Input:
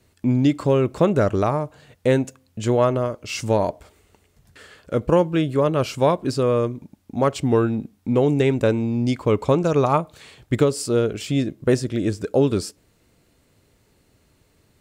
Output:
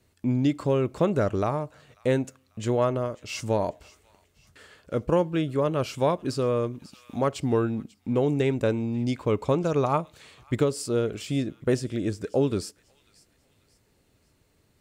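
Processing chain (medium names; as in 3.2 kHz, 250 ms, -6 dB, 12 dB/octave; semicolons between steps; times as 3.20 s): feedback echo behind a high-pass 542 ms, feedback 39%, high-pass 1.8 kHz, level -20 dB; 5.65–7.65 s: tape noise reduction on one side only encoder only; trim -5.5 dB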